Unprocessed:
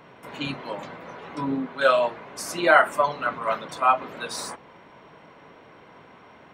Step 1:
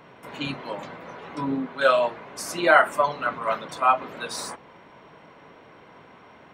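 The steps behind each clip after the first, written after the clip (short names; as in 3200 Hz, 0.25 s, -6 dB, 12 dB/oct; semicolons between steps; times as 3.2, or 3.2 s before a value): nothing audible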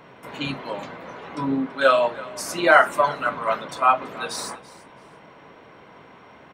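resonator 67 Hz, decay 0.23 s, mix 40%; feedback echo 0.333 s, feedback 24%, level -20 dB; gain +4.5 dB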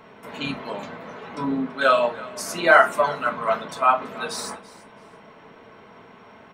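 reverb, pre-delay 4 ms, DRR 6.5 dB; gain -1 dB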